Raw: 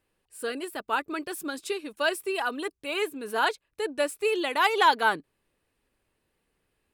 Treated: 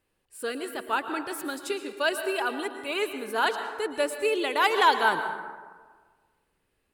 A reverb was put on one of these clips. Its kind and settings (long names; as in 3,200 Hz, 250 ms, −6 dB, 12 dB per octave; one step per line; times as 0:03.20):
dense smooth reverb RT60 1.5 s, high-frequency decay 0.45×, pre-delay 100 ms, DRR 8 dB